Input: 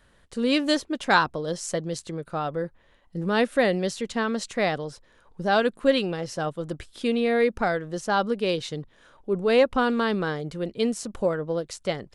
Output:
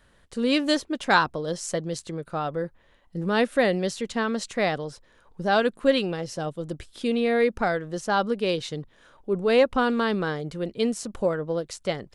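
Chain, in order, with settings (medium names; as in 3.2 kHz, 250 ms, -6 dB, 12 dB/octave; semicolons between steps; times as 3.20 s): 6.21–7.11 s: dynamic bell 1.4 kHz, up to -6 dB, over -44 dBFS, Q 0.79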